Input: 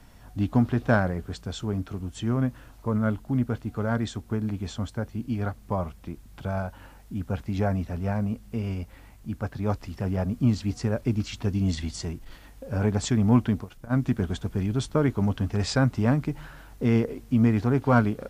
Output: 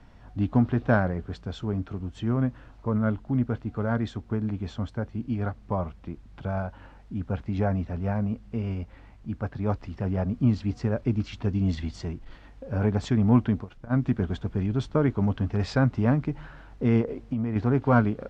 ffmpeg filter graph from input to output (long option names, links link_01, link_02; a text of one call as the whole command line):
ffmpeg -i in.wav -filter_complex "[0:a]asettb=1/sr,asplit=3[link_01][link_02][link_03];[link_01]atrim=end=17.014[link_04];[link_02]atrim=start=17.01:end=17.56,asetpts=PTS-STARTPTS,afade=type=in:duration=0.004:curve=qsin,afade=type=out:start_time=0.546:duration=0.004:curve=qsin,equalizer=frequency=560:width_type=o:width=0.84:gain=4,acompressor=threshold=-23dB:ratio=12:attack=3.2:release=140:knee=1:detection=peak[link_05];[link_03]atrim=start=17.556[link_06];[link_04][link_05]acrossfade=duration=0.004:curve1=hsin:curve2=qsin[link_07];[link_07][link_06]acrossfade=duration=0.004:curve1=qsin:curve2=hsin,lowpass=5400,highshelf=frequency=3700:gain=-9" out.wav